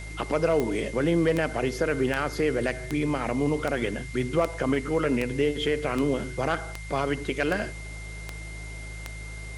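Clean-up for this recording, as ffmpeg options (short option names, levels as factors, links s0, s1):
-af "adeclick=t=4,bandreject=f=53:t=h:w=4,bandreject=f=106:t=h:w=4,bandreject=f=159:t=h:w=4,bandreject=f=2100:w=30,afwtdn=0.004"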